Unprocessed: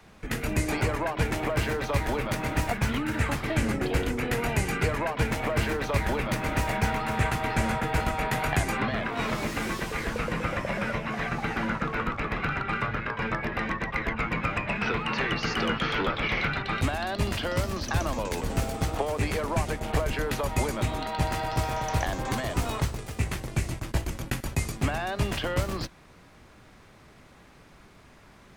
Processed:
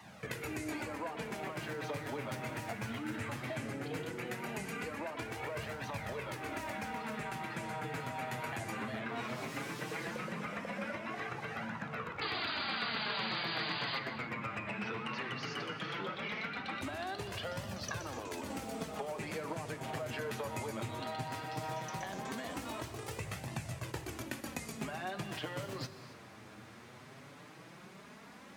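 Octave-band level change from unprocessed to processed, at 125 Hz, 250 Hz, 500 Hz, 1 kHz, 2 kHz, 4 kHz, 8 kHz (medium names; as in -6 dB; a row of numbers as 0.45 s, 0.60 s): -15.0 dB, -11.0 dB, -10.5 dB, -10.5 dB, -10.0 dB, -6.5 dB, -10.5 dB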